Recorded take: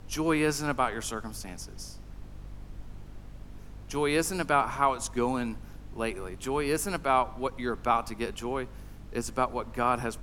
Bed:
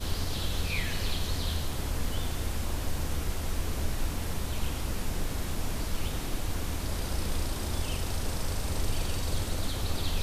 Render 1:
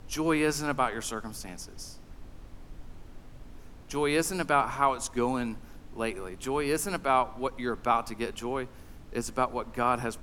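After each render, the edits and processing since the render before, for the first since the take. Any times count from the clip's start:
hum removal 50 Hz, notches 4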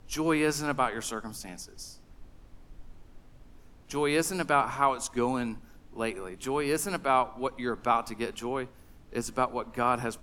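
noise reduction from a noise print 6 dB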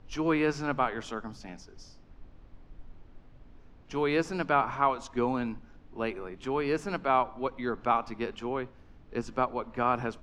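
high-frequency loss of the air 170 metres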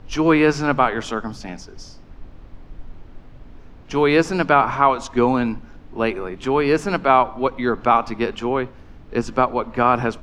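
level +11.5 dB
brickwall limiter −2 dBFS, peak gain reduction 2 dB

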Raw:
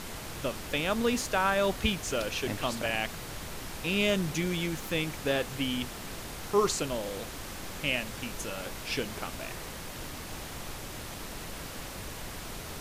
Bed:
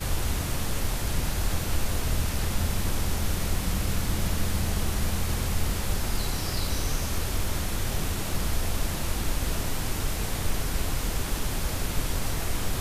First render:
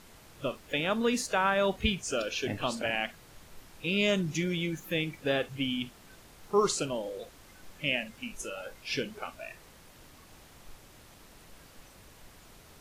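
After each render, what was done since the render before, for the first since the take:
noise reduction from a noise print 14 dB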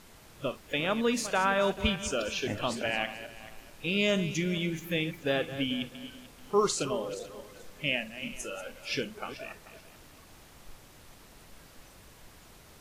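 feedback delay that plays each chunk backwards 218 ms, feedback 46%, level −12 dB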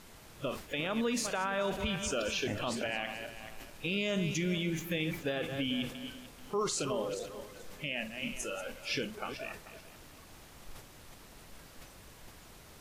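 brickwall limiter −24 dBFS, peak gain reduction 10 dB
level that may fall only so fast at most 110 dB per second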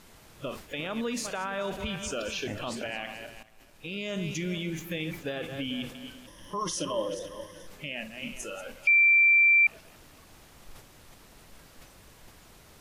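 0:03.43–0:04.26: fade in, from −14.5 dB
0:06.27–0:07.67: EQ curve with evenly spaced ripples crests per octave 1.2, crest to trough 15 dB
0:08.87–0:09.67: beep over 2,350 Hz −16.5 dBFS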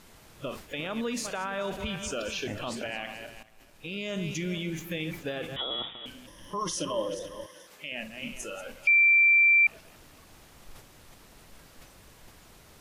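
0:05.56–0:06.06: voice inversion scrambler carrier 3,600 Hz
0:07.46–0:07.92: high-pass filter 630 Hz 6 dB per octave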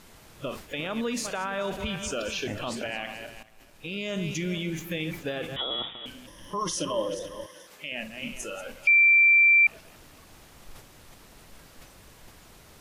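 level +2 dB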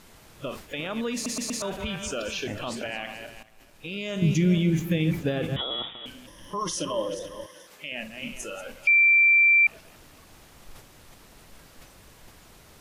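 0:01.14: stutter in place 0.12 s, 4 plays
0:04.22–0:05.61: parametric band 130 Hz +12 dB 3 octaves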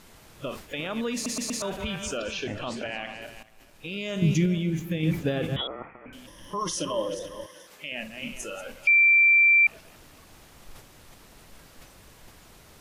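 0:02.17–0:03.22: high-frequency loss of the air 53 metres
0:04.46–0:05.03: clip gain −4.5 dB
0:05.67–0:06.13: Chebyshev low-pass filter 2,500 Hz, order 8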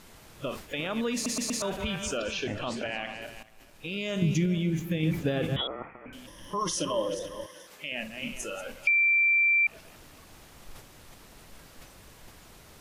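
downward compressor 4 to 1, threshold −22 dBFS, peak gain reduction 5 dB

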